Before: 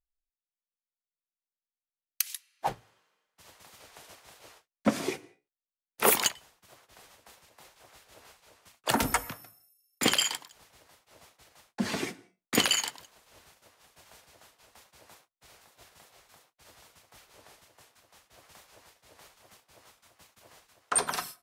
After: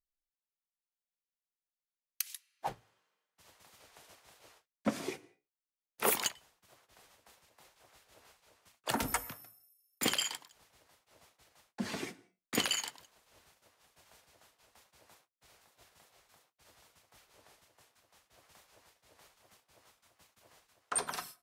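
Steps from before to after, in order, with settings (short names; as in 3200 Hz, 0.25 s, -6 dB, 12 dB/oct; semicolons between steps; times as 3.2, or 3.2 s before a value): 9.08–10.12 high shelf 11000 Hz +9 dB; gain -7 dB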